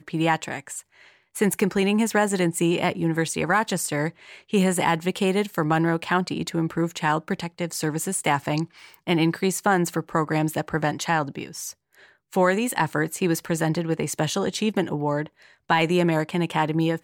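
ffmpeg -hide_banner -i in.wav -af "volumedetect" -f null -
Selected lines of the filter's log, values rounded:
mean_volume: -24.2 dB
max_volume: -7.9 dB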